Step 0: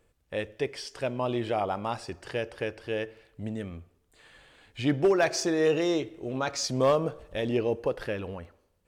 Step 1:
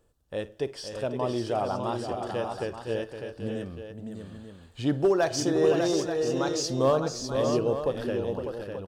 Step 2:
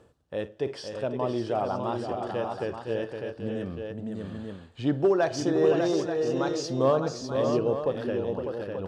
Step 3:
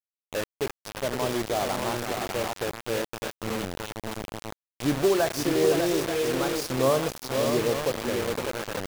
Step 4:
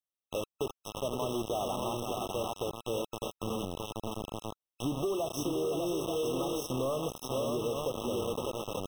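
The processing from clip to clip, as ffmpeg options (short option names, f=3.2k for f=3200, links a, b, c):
-filter_complex "[0:a]equalizer=f=2.2k:w=2.5:g=-12,asplit=2[a][b];[b]aecho=0:1:53|513|600|884:0.119|0.376|0.473|0.299[c];[a][c]amix=inputs=2:normalize=0"
-af "areverse,acompressor=mode=upward:threshold=-28dB:ratio=2.5,areverse,highpass=90,aemphasis=mode=reproduction:type=50fm"
-af "acrusher=bits=4:mix=0:aa=0.000001"
-af "asoftclip=type=tanh:threshold=-18.5dB,acompressor=threshold=-29dB:ratio=10,afftfilt=real='re*eq(mod(floor(b*sr/1024/1300),2),0)':imag='im*eq(mod(floor(b*sr/1024/1300),2),0)':win_size=1024:overlap=0.75"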